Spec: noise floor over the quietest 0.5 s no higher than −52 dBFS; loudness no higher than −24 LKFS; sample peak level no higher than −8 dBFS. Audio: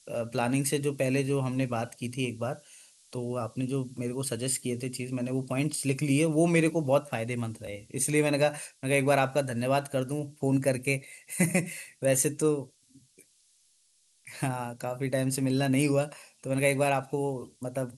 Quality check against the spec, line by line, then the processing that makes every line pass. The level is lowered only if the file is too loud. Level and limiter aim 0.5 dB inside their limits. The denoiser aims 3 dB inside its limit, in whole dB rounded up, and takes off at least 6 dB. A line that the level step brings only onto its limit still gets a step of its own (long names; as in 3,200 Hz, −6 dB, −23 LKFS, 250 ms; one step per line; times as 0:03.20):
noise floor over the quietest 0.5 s −67 dBFS: in spec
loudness −29.0 LKFS: in spec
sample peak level −9.5 dBFS: in spec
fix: no processing needed